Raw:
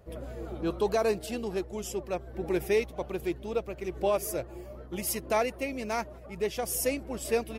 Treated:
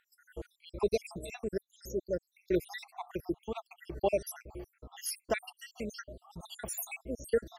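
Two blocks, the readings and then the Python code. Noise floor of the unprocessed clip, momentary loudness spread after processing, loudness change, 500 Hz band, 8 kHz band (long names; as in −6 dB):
−46 dBFS, 16 LU, −5.0 dB, −5.5 dB, −6.5 dB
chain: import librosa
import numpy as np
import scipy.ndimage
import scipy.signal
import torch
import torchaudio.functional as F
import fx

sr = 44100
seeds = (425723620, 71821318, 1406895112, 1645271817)

y = fx.spec_dropout(x, sr, seeds[0], share_pct=77)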